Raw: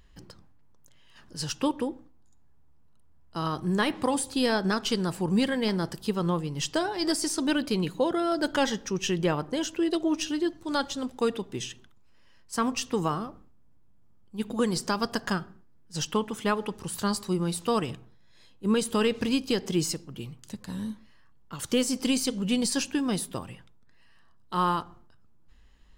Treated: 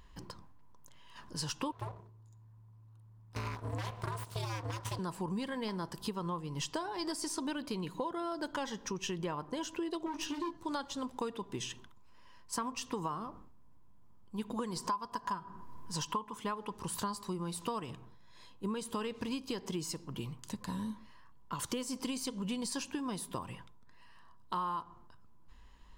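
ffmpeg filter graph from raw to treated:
ffmpeg -i in.wav -filter_complex "[0:a]asettb=1/sr,asplit=3[link_01][link_02][link_03];[link_01]atrim=end=1.724[link_04];[link_02]atrim=start=1.72:end=4.99,asetpts=PTS-STARTPTS,afade=type=in:duration=0.004:curve=qsin,afade=type=out:start_time=3.266:duration=0.004:curve=qsin,bandreject=frequency=60:width_type=h:width=6,bandreject=frequency=120:width_type=h:width=6,bandreject=frequency=180:width_type=h:width=6,bandreject=frequency=240:width_type=h:width=6,bandreject=frequency=300:width_type=h:width=6,bandreject=frequency=360:width_type=h:width=6,bandreject=frequency=420:width_type=h:width=6,aeval=exprs='abs(val(0))':channel_layout=same,aeval=exprs='val(0)*sin(2*PI*110*n/s)':channel_layout=same[link_05];[link_03]atrim=start=4.986[link_06];[link_04][link_05]acrossfade=duration=0.004:curve1=hsin:curve2=qsin[link_07];[link_07][link_06]acrossfade=duration=0.004:curve1=qsin:curve2=hsin,asettb=1/sr,asplit=3[link_08][link_09][link_10];[link_08]atrim=end=10.064[link_11];[link_09]atrim=start=10.06:end=10.57,asetpts=PTS-STARTPTS,afade=type=in:duration=0.004:curve=qsin,afade=type=out:start_time=0.506:duration=0.004:curve=qsin,highshelf=frequency=6700:gain=-6,asoftclip=type=hard:threshold=-28dB,asplit=2[link_12][link_13];[link_13]adelay=18,volume=-3.5dB[link_14];[link_12][link_14]amix=inputs=2:normalize=0,atrim=end_sample=22491[link_15];[link_10]atrim=start=10.566[link_16];[link_11][link_15]acrossfade=duration=0.004:curve1=hsin:curve2=qsin[link_17];[link_17][link_16]acrossfade=duration=0.004:curve1=qsin:curve2=hsin,asettb=1/sr,asplit=3[link_18][link_19][link_20];[link_18]atrim=end=14.774[link_21];[link_19]atrim=start=14.77:end=16.38,asetpts=PTS-STARTPTS,afade=type=in:duration=0.004:curve=qsin,afade=type=out:start_time=1.606:duration=0.004:curve=qsin,equalizer=frequency=1000:width=6.3:gain=12,acompressor=mode=upward:threshold=-31dB:ratio=2.5:attack=3.2:release=140:knee=2.83:detection=peak[link_22];[link_20]atrim=start=16.376[link_23];[link_21][link_22]acrossfade=duration=0.004:curve1=hsin:curve2=qsin[link_24];[link_24][link_23]acrossfade=duration=0.004:curve1=qsin:curve2=hsin,equalizer=frequency=1000:width_type=o:width=0.25:gain=13.5,acompressor=threshold=-35dB:ratio=6" out.wav

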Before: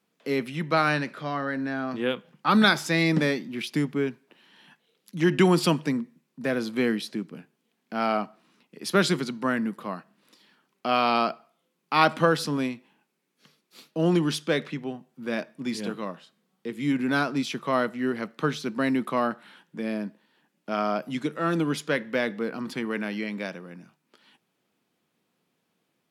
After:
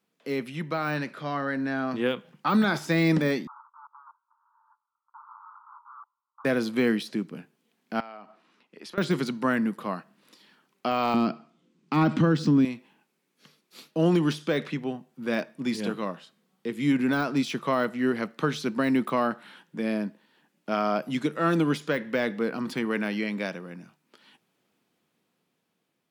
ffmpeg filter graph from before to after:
ffmpeg -i in.wav -filter_complex "[0:a]asettb=1/sr,asplit=3[link_01][link_02][link_03];[link_01]atrim=end=3.474[link_04];[link_02]atrim=start=3.47:end=6.45,asetpts=PTS-STARTPTS,afade=type=in:duration=0.004:curve=qsin,afade=type=out:start_time=2.976:duration=0.004:curve=qsin,acompressor=threshold=-34dB:ratio=3:attack=3.2:release=140:knee=1:detection=peak,aeval=exprs='(mod(66.8*val(0)+1,2)-1)/66.8':channel_layout=same,asuperpass=centerf=1100:order=12:qfactor=2.1[link_05];[link_03]atrim=start=6.446[link_06];[link_04][link_05]acrossfade=duration=0.004:curve1=hsin:curve2=qsin[link_07];[link_07][link_06]acrossfade=duration=0.004:curve1=qsin:curve2=hsin,asettb=1/sr,asplit=3[link_08][link_09][link_10];[link_08]atrim=end=8.004[link_11];[link_09]atrim=start=8:end=8.98,asetpts=PTS-STARTPTS,afade=type=in:duration=0.004:curve=qsin,afade=type=out:start_time=0.976:duration=0.004:curve=qsin,highpass=frequency=470:poles=1,aemphasis=mode=reproduction:type=50fm,acompressor=threshold=-41dB:ratio=8:attack=3.2:release=140:knee=1:detection=peak[link_12];[link_10]atrim=start=8.976[link_13];[link_11][link_12]acrossfade=duration=0.004:curve1=hsin:curve2=qsin[link_14];[link_14][link_13]acrossfade=duration=0.004:curve1=qsin:curve2=hsin,asettb=1/sr,asplit=3[link_15][link_16][link_17];[link_15]atrim=end=11.144[link_18];[link_16]atrim=start=11.14:end=12.65,asetpts=PTS-STARTPTS,afade=type=in:duration=0.004:curve=qsin,afade=type=out:start_time=1.506:duration=0.004:curve=qsin,lowpass=frequency=7800:width=0.5412,lowpass=frequency=7800:width=1.3066,lowshelf=frequency=400:width_type=q:width=1.5:gain=10[link_19];[link_17]atrim=start=12.646[link_20];[link_18][link_19]acrossfade=duration=0.004:curve1=hsin:curve2=qsin[link_21];[link_21][link_20]acrossfade=duration=0.004:curve1=qsin:curve2=hsin,deesser=0.9,alimiter=limit=-16dB:level=0:latency=1:release=123,dynaudnorm=framelen=310:gausssize=9:maxgain=5dB,volume=-3dB" out.wav

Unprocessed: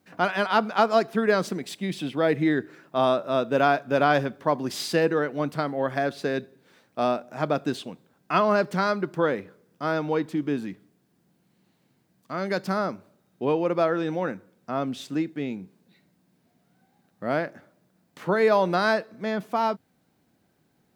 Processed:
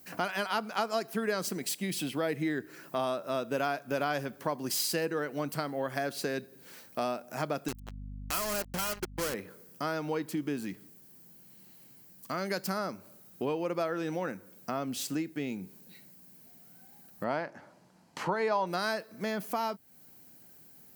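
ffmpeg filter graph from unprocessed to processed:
ffmpeg -i in.wav -filter_complex "[0:a]asettb=1/sr,asplit=3[link_01][link_02][link_03];[link_01]atrim=end=7.684[link_04];[link_02]atrim=start=7.68:end=9.34,asetpts=PTS-STARTPTS,afade=type=in:duration=0.004:curve=qsin,afade=type=out:start_time=1.656:duration=0.004:curve=qsin,acrusher=bits=3:mix=0:aa=0.5,asoftclip=type=hard:threshold=-23.5dB,aeval=exprs='val(0)+0.00708*(sin(2*PI*50*n/s)+sin(2*PI*2*50*n/s)/2+sin(2*PI*3*50*n/s)/3+sin(2*PI*4*50*n/s)/4+sin(2*PI*5*50*n/s)/5)':channel_layout=same[link_05];[link_03]atrim=start=9.336[link_06];[link_04][link_05]acrossfade=duration=0.004:curve1=hsin:curve2=qsin[link_07];[link_07][link_06]acrossfade=duration=0.004:curve1=qsin:curve2=hsin,asettb=1/sr,asplit=3[link_08][link_09][link_10];[link_08]atrim=end=17.244[link_11];[link_09]atrim=start=17.24:end=18.67,asetpts=PTS-STARTPTS,afade=type=in:duration=0.004:curve=qsin,afade=type=out:start_time=1.426:duration=0.004:curve=qsin,lowpass=5400,equalizer=frequency=910:width_type=o:width=0.52:gain=10[link_12];[link_10]atrim=start=18.666[link_13];[link_11][link_12]acrossfade=duration=0.004:curve1=hsin:curve2=qsin[link_14];[link_14][link_13]acrossfade=duration=0.004:curve1=qsin:curve2=hsin,aemphasis=mode=production:type=75fm,bandreject=frequency=3600:width=9.3,acompressor=threshold=-38dB:ratio=2.5,volume=3.5dB" out.wav

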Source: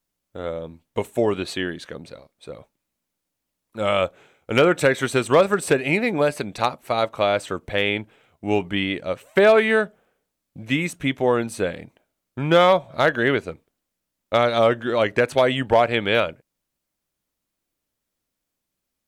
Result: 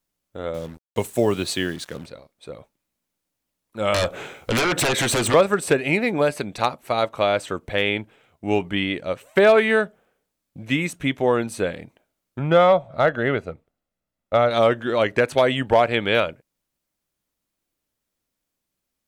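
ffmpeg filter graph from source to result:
ffmpeg -i in.wav -filter_complex "[0:a]asettb=1/sr,asplit=3[link_01][link_02][link_03];[link_01]atrim=end=0.544[link_04];[link_02]atrim=start=0.54:end=2.06,asetpts=PTS-STARTPTS,afade=type=in:duration=0.004:curve=qsin,afade=type=out:start_time=1.516:duration=0.004:curve=qsin,highpass=frequency=68:width=0.5412,highpass=frequency=68:width=1.3066,bass=frequency=250:gain=4,treble=frequency=4000:gain=9,acrusher=bits=6:mix=0:aa=0.5[link_05];[link_03]atrim=start=2.056[link_06];[link_04][link_05]acrossfade=duration=0.004:curve1=hsin:curve2=qsin[link_07];[link_07][link_06]acrossfade=duration=0.004:curve1=qsin:curve2=hsin,asettb=1/sr,asplit=3[link_08][link_09][link_10];[link_08]atrim=end=3.944[link_11];[link_09]atrim=start=3.94:end=5.34,asetpts=PTS-STARTPTS,afade=type=in:duration=0.004:curve=qsin,afade=type=out:start_time=1.396:duration=0.004:curve=qsin,acompressor=threshold=-36dB:ratio=2:attack=3.2:release=140:knee=1:detection=peak,aeval=exprs='0.141*sin(PI/2*5.01*val(0)/0.141)':channel_layout=same[link_12];[link_10]atrim=start=5.336[link_13];[link_11][link_12]acrossfade=duration=0.004:curve1=hsin:curve2=qsin[link_14];[link_14][link_13]acrossfade=duration=0.004:curve1=qsin:curve2=hsin,asettb=1/sr,asplit=3[link_15][link_16][link_17];[link_15]atrim=end=12.394[link_18];[link_16]atrim=start=12.39:end=14.51,asetpts=PTS-STARTPTS,afade=type=in:duration=0.004:curve=qsin,afade=type=out:start_time=2.116:duration=0.004:curve=qsin,highshelf=frequency=2700:gain=-11.5,aecho=1:1:1.5:0.33,atrim=end_sample=93492[link_19];[link_17]atrim=start=14.506[link_20];[link_18][link_19]acrossfade=duration=0.004:curve1=hsin:curve2=qsin[link_21];[link_21][link_20]acrossfade=duration=0.004:curve1=qsin:curve2=hsin" out.wav

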